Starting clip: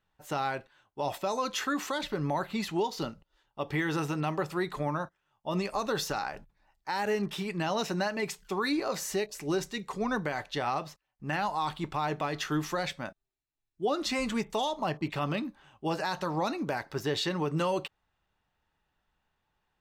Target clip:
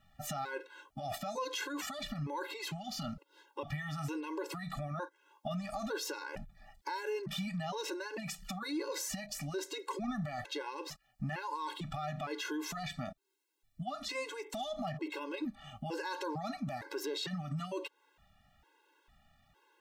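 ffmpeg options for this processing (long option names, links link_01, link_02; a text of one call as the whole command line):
ffmpeg -i in.wav -af "alimiter=level_in=8dB:limit=-24dB:level=0:latency=1:release=51,volume=-8dB,acompressor=threshold=-50dB:ratio=2.5,afftfilt=real='re*gt(sin(2*PI*1.1*pts/sr)*(1-2*mod(floor(b*sr/1024/280),2)),0)':imag='im*gt(sin(2*PI*1.1*pts/sr)*(1-2*mod(floor(b*sr/1024/280),2)),0)':win_size=1024:overlap=0.75,volume=13dB" out.wav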